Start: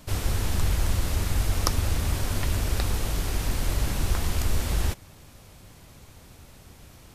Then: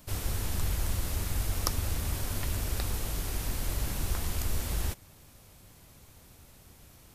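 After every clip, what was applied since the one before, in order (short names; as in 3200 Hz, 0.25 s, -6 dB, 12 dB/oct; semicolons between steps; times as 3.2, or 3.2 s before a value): high shelf 10000 Hz +10 dB; gain -6.5 dB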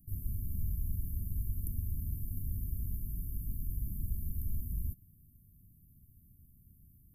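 inverse Chebyshev band-stop 860–4400 Hz, stop band 70 dB; gain -4 dB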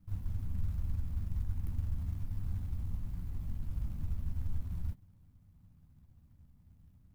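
median filter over 41 samples; high shelf 7900 Hz +9 dB; flange 0.4 Hz, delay 10 ms, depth 3.5 ms, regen -42%; gain +4.5 dB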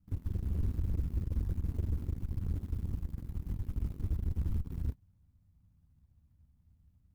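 added harmonics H 7 -14 dB, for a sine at -23 dBFS; soft clip -26.5 dBFS, distortion -19 dB; bell 62 Hz +6 dB 1.4 oct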